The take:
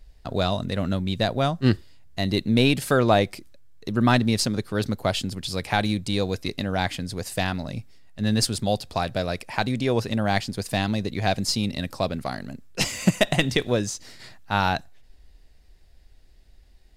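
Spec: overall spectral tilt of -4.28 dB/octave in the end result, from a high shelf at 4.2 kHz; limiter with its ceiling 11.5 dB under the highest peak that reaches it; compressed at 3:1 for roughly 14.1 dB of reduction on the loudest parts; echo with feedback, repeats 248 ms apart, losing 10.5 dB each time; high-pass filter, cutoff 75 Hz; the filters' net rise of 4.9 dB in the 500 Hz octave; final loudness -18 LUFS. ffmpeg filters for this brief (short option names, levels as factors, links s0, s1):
-af "highpass=75,equalizer=f=500:t=o:g=6,highshelf=f=4200:g=5.5,acompressor=threshold=0.0282:ratio=3,alimiter=limit=0.0708:level=0:latency=1,aecho=1:1:248|496|744:0.299|0.0896|0.0269,volume=7.5"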